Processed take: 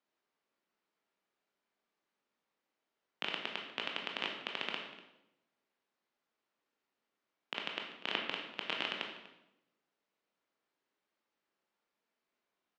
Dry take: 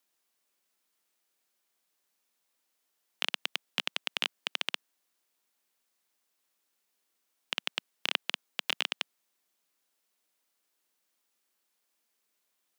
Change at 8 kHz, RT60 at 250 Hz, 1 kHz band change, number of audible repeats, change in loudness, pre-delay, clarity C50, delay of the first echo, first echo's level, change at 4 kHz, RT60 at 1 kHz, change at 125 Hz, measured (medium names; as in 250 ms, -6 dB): -16.5 dB, 1.0 s, -0.5 dB, 1, -5.0 dB, 16 ms, 4.5 dB, 244 ms, -17.5 dB, -6.5 dB, 0.85 s, no reading